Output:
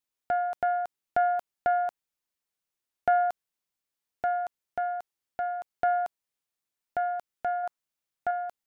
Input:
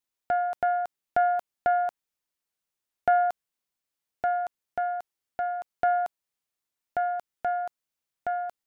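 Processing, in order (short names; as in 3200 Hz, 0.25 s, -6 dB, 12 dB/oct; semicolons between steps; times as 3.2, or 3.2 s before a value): 7.63–8.31 dynamic EQ 1100 Hz, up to +5 dB, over -43 dBFS, Q 0.98; gain -1.5 dB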